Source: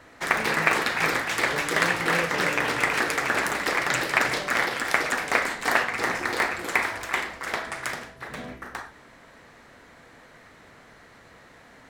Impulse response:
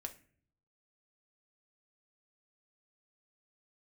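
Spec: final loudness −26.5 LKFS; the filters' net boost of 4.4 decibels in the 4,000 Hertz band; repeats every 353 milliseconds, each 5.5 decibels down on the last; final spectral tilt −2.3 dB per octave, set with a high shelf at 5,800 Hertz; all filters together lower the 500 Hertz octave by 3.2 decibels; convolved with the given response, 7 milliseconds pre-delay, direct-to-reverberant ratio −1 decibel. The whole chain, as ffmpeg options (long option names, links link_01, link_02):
-filter_complex "[0:a]equalizer=frequency=500:width_type=o:gain=-4,equalizer=frequency=4000:width_type=o:gain=8,highshelf=frequency=5800:gain=-6.5,aecho=1:1:353|706|1059|1412|1765|2118|2471:0.531|0.281|0.149|0.079|0.0419|0.0222|0.0118,asplit=2[link_01][link_02];[1:a]atrim=start_sample=2205,adelay=7[link_03];[link_02][link_03]afir=irnorm=-1:irlink=0,volume=4dB[link_04];[link_01][link_04]amix=inputs=2:normalize=0,volume=-8dB"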